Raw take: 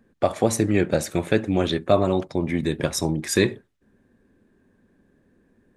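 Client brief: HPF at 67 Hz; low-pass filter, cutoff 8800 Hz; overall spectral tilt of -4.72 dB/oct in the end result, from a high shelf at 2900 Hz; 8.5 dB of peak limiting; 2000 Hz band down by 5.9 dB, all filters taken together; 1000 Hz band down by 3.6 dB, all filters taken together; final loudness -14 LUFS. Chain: HPF 67 Hz; LPF 8800 Hz; bell 1000 Hz -4.5 dB; bell 2000 Hz -8.5 dB; high shelf 2900 Hz +6 dB; gain +12.5 dB; limiter -2 dBFS

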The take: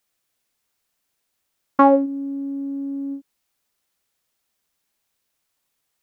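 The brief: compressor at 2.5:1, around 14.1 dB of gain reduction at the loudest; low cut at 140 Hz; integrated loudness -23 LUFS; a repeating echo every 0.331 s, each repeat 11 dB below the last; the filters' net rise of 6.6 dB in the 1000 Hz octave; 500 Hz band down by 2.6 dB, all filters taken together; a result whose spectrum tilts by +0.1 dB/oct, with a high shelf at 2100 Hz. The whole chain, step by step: HPF 140 Hz; bell 500 Hz -5.5 dB; bell 1000 Hz +8 dB; high shelf 2100 Hz +8 dB; compressor 2.5:1, threshold -26 dBFS; feedback echo 0.331 s, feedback 28%, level -11 dB; gain +6.5 dB

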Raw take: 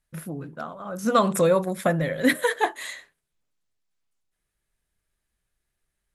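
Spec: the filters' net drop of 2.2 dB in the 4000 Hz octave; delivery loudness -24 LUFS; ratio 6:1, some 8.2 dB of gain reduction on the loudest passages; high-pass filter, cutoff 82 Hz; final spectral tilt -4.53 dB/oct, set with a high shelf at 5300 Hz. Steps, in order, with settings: HPF 82 Hz; bell 4000 Hz -5.5 dB; high shelf 5300 Hz +8 dB; compressor 6:1, threshold -24 dBFS; gain +6 dB

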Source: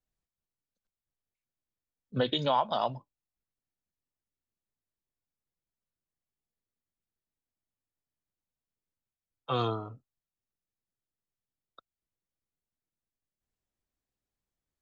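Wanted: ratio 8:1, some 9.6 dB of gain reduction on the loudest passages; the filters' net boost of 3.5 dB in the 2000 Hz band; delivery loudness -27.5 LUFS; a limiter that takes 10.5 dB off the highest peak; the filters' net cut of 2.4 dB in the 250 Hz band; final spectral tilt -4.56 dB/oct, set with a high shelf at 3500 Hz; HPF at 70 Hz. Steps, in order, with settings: HPF 70 Hz; bell 250 Hz -3 dB; bell 2000 Hz +7 dB; high shelf 3500 Hz -7 dB; compressor 8:1, threshold -32 dBFS; gain +16.5 dB; limiter -16 dBFS

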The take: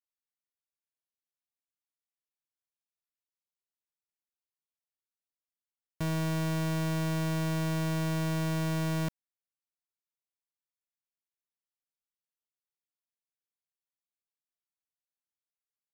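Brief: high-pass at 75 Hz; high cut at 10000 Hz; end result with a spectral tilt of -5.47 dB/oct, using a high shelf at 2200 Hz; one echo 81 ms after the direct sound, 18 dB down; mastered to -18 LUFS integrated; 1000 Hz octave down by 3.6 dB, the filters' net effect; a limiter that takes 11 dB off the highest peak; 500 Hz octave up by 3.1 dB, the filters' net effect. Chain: HPF 75 Hz; LPF 10000 Hz; bell 500 Hz +6.5 dB; bell 1000 Hz -7.5 dB; high shelf 2200 Hz +7.5 dB; limiter -29.5 dBFS; echo 81 ms -18 dB; gain +22 dB

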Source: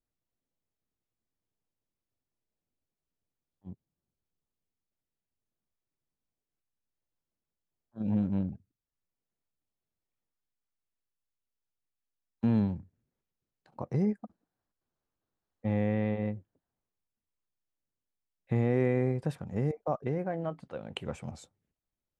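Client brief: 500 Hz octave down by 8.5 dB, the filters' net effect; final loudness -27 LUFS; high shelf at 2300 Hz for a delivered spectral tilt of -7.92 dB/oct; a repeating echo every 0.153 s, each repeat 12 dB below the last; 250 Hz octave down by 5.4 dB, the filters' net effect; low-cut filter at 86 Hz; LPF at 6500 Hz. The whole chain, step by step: HPF 86 Hz; LPF 6500 Hz; bell 250 Hz -5 dB; bell 500 Hz -8.5 dB; high shelf 2300 Hz -9 dB; feedback echo 0.153 s, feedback 25%, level -12 dB; gain +9.5 dB

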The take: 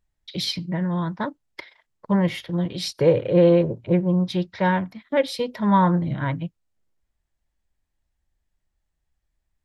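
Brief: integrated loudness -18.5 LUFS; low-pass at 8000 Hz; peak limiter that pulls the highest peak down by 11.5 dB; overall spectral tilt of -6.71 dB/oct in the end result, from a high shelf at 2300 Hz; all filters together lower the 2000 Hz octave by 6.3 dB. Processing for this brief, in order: LPF 8000 Hz; bell 2000 Hz -5.5 dB; high shelf 2300 Hz -5.5 dB; gain +9.5 dB; limiter -8.5 dBFS

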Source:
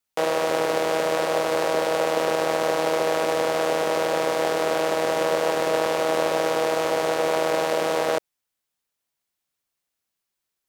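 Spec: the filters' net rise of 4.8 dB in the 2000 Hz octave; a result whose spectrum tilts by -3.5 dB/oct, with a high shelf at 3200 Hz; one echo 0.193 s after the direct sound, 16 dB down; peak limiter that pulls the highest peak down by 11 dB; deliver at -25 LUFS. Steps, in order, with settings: bell 2000 Hz +7.5 dB; high shelf 3200 Hz -4.5 dB; limiter -17.5 dBFS; echo 0.193 s -16 dB; gain +4.5 dB

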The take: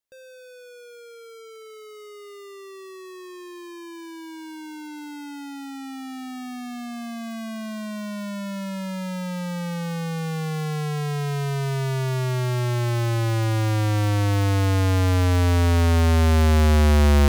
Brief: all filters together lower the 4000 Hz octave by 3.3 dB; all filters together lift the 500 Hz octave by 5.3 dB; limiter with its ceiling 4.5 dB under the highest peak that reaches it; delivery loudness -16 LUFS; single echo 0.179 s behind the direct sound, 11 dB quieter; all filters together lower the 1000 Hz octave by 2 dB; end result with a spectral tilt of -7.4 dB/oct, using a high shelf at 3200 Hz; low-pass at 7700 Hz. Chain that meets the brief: LPF 7700 Hz; bell 500 Hz +8 dB; bell 1000 Hz -6 dB; high shelf 3200 Hz +3.5 dB; bell 4000 Hz -6.5 dB; limiter -13.5 dBFS; echo 0.179 s -11 dB; gain +7 dB

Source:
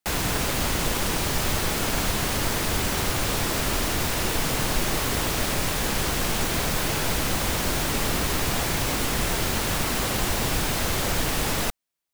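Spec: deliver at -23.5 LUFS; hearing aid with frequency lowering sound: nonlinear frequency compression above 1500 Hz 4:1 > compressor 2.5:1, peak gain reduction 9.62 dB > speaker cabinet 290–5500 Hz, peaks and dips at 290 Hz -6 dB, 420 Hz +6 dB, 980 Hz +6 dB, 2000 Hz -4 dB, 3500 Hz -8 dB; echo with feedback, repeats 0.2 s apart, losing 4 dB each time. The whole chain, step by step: feedback echo 0.2 s, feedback 63%, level -4 dB; nonlinear frequency compression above 1500 Hz 4:1; compressor 2.5:1, threshold -29 dBFS; speaker cabinet 290–5500 Hz, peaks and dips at 290 Hz -6 dB, 420 Hz +6 dB, 980 Hz +6 dB, 2000 Hz -4 dB, 3500 Hz -8 dB; gain +5 dB

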